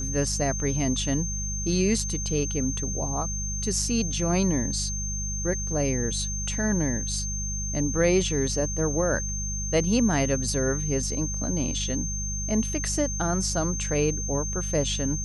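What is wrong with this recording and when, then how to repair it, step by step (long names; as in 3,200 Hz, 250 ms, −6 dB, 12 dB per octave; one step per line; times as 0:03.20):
mains hum 50 Hz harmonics 4 −32 dBFS
whistle 6,300 Hz −31 dBFS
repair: hum removal 50 Hz, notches 4
notch filter 6,300 Hz, Q 30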